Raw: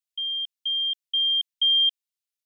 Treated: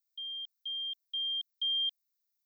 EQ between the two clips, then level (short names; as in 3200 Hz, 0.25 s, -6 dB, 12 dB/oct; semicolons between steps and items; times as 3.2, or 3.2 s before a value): tilt +5 dB/oct; fixed phaser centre 2900 Hz, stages 6; -9.0 dB